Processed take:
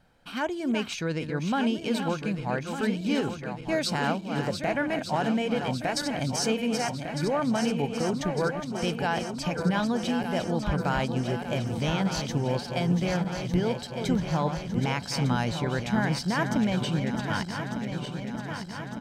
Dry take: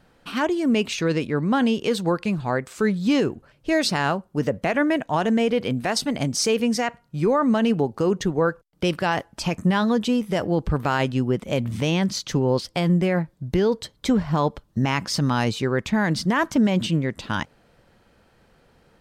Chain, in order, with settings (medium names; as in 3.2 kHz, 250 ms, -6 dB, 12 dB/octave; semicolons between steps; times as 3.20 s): backward echo that repeats 602 ms, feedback 79%, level -7.5 dB; comb 1.3 ms, depth 32%; trim -6.5 dB